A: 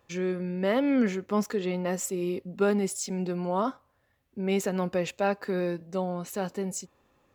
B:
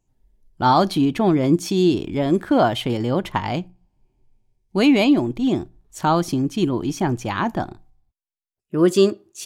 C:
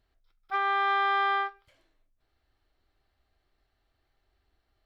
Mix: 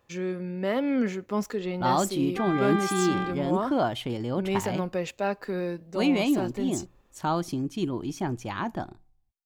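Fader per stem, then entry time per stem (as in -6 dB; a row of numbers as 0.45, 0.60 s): -1.5, -8.5, -6.0 dB; 0.00, 1.20, 1.85 s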